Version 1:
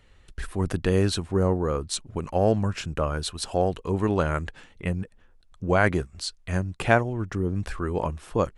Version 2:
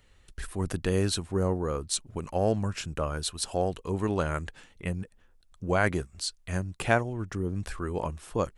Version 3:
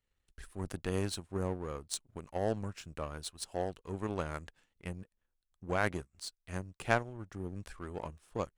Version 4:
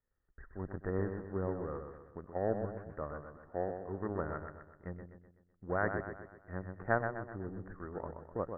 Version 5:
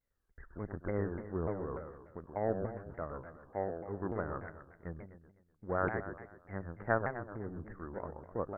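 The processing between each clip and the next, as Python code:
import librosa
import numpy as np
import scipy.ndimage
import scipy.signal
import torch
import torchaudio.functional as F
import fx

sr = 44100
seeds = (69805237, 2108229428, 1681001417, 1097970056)

y1 = fx.high_shelf(x, sr, hz=5800.0, db=9.0)
y1 = F.gain(torch.from_numpy(y1), -4.5).numpy()
y2 = fx.power_curve(y1, sr, exponent=1.4)
y2 = F.gain(torch.from_numpy(y2), -3.0).numpy()
y3 = scipy.signal.sosfilt(scipy.signal.cheby1(6, 3, 1900.0, 'lowpass', fs=sr, output='sos'), y2)
y3 = fx.echo_feedback(y3, sr, ms=126, feedback_pct=47, wet_db=-7.0)
y4 = fx.vibrato_shape(y3, sr, shape='saw_down', rate_hz=3.4, depth_cents=250.0)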